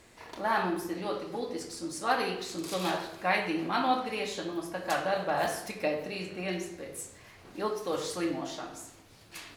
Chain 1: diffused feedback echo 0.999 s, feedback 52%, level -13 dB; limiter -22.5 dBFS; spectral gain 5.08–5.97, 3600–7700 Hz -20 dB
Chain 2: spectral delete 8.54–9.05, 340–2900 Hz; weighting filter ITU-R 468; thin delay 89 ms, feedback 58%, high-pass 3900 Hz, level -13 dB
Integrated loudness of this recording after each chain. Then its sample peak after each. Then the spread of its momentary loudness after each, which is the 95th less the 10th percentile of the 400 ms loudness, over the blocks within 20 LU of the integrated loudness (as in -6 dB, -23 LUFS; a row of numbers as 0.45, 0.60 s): -34.5, -29.5 LUFS; -22.5, -7.0 dBFS; 9, 11 LU